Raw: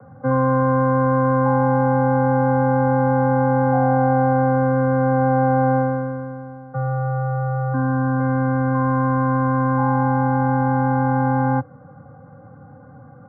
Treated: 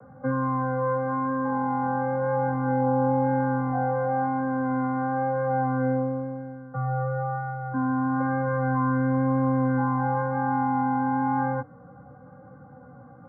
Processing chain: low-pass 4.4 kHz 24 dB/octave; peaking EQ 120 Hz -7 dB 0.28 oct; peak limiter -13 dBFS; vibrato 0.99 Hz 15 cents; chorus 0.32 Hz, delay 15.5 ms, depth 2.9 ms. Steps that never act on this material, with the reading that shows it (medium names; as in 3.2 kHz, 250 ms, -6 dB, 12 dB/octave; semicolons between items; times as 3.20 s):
low-pass 4.4 kHz: input has nothing above 1.6 kHz